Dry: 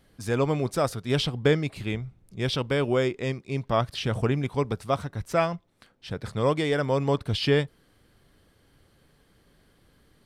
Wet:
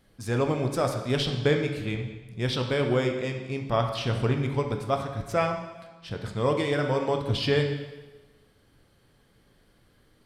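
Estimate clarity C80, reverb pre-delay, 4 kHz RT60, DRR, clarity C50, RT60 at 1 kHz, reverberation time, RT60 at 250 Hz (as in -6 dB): 8.5 dB, 6 ms, 1.1 s, 3.5 dB, 6.5 dB, 1.2 s, 1.2 s, 1.1 s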